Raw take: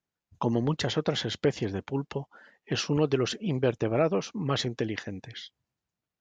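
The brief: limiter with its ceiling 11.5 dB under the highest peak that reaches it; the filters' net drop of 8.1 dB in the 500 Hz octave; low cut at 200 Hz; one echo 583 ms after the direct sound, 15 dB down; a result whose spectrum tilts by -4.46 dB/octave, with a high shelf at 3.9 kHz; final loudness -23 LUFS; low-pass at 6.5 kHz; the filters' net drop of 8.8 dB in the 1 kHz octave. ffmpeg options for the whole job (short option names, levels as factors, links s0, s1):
-af "highpass=200,lowpass=6500,equalizer=f=500:t=o:g=-8,equalizer=f=1000:t=o:g=-8.5,highshelf=f=3900:g=-8,alimiter=level_in=1.88:limit=0.0631:level=0:latency=1,volume=0.531,aecho=1:1:583:0.178,volume=7.08"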